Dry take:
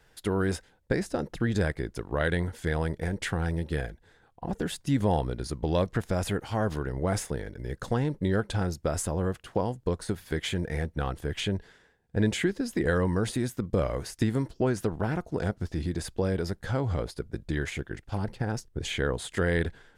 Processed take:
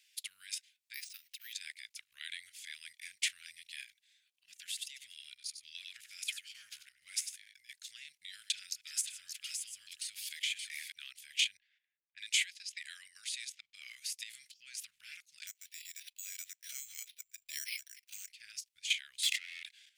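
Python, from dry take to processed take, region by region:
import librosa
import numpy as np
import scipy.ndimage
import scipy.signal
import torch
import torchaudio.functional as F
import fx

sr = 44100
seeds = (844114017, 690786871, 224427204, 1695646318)

y = fx.chain(x, sr, fx.law_mismatch(coded='mu'),
    fx.level_steps(step_db=9),
    fx.resample_bad(factor=3, down='filtered', up='hold'), at=(0.94, 1.53))
y = fx.chain(y, sr, fx.transient(attack_db=-9, sustain_db=-5),
    fx.echo_single(ms=96, db=-7.5), at=(4.66, 7.54))
y = fx.chain(y, sr, fx.reverse_delay(ms=133, wet_db=-14),
    fx.echo_single(ms=572, db=-4.0),
    fx.band_squash(depth_pct=70), at=(8.28, 10.92))
y = fx.chain(y, sr, fx.peak_eq(hz=140.0, db=-9.0, octaves=2.4),
    fx.env_lowpass(base_hz=1100.0, full_db=-27.5), at=(11.57, 13.77))
y = fx.chain(y, sr, fx.resample_bad(factor=6, down='filtered', up='hold'),
    fx.peak_eq(hz=270.0, db=-14.5, octaves=0.49), at=(15.47, 18.29))
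y = fx.chain(y, sr, fx.lower_of_two(delay_ms=1.5),
    fx.lowpass(hz=2400.0, slope=6),
    fx.env_flatten(amount_pct=100), at=(19.23, 19.64))
y = fx.level_steps(y, sr, step_db=11)
y = scipy.signal.sosfilt(scipy.signal.ellip(4, 1.0, 60, 2300.0, 'highpass', fs=sr, output='sos'), y)
y = y * librosa.db_to_amplitude(6.5)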